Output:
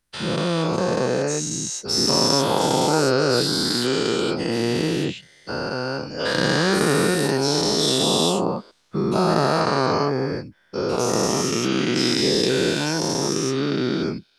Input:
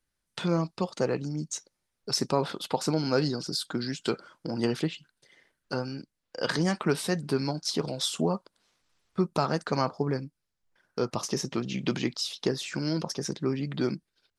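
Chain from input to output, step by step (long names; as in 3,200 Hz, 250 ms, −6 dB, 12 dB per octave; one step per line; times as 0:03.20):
every bin's largest magnitude spread in time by 480 ms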